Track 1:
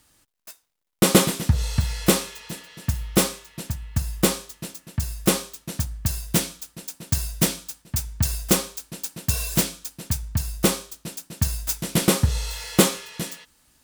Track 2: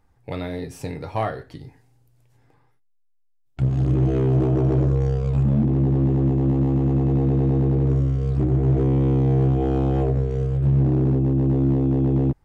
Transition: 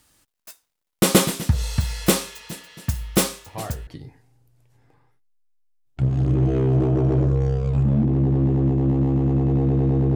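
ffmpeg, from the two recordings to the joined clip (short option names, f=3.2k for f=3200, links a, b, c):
-filter_complex "[1:a]asplit=2[a][b];[0:a]apad=whole_dur=10.15,atrim=end=10.15,atrim=end=3.872[c];[b]atrim=start=1.468:end=7.75[d];[a]atrim=start=1.06:end=1.47,asetpts=PTS-STARTPTS,volume=-9dB,afade=t=in:d=0.004:c=hsin,afade=t=out:st=0.406:d=0.004:c=hsin,adelay=3460[e];[c][d]acrossfade=d=0.004:c1=hsin:c2=hsin[f];[f][e]amix=inputs=2:normalize=0"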